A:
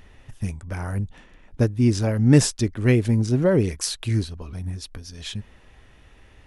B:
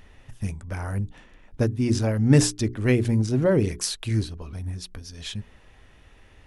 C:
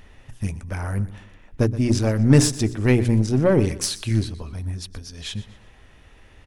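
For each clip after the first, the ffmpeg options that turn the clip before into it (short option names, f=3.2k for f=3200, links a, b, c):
-af "bandreject=f=60:t=h:w=6,bandreject=f=120:t=h:w=6,bandreject=f=180:t=h:w=6,bandreject=f=240:t=h:w=6,bandreject=f=300:t=h:w=6,bandreject=f=360:t=h:w=6,bandreject=f=420:t=h:w=6,volume=-1dB"
-af "aeval=exprs='0.631*(cos(1*acos(clip(val(0)/0.631,-1,1)))-cos(1*PI/2))+0.0224*(cos(8*acos(clip(val(0)/0.631,-1,1)))-cos(8*PI/2))':c=same,aecho=1:1:122|244|366:0.141|0.0509|0.0183,volume=2.5dB"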